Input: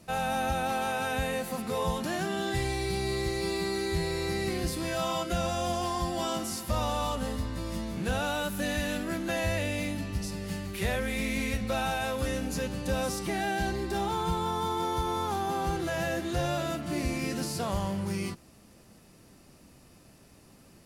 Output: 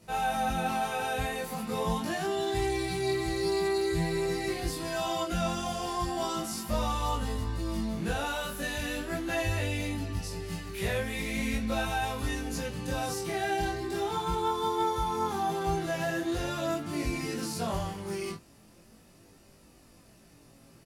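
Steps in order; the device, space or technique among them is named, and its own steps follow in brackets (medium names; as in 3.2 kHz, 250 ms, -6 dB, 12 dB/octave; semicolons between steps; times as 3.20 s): double-tracked vocal (doubling 18 ms -2 dB; chorus 0.41 Hz, delay 20 ms, depth 5.5 ms)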